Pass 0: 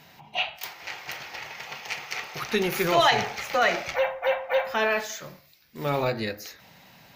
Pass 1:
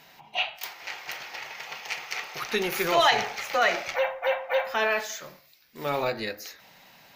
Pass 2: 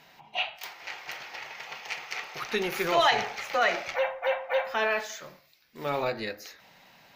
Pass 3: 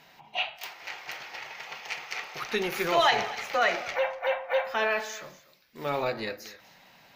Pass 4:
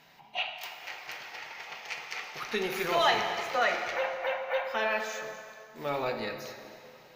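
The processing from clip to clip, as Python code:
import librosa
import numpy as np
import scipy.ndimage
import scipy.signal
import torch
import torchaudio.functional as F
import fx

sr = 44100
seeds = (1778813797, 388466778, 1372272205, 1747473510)

y1 = fx.peak_eq(x, sr, hz=92.0, db=-10.0, octaves=2.8)
y2 = fx.high_shelf(y1, sr, hz=6700.0, db=-7.0)
y2 = y2 * librosa.db_to_amplitude(-1.5)
y3 = y2 + 10.0 ** (-18.0 / 20.0) * np.pad(y2, (int(243 * sr / 1000.0), 0))[:len(y2)]
y4 = fx.rev_plate(y3, sr, seeds[0], rt60_s=2.6, hf_ratio=0.75, predelay_ms=0, drr_db=5.5)
y4 = y4 * librosa.db_to_amplitude(-3.0)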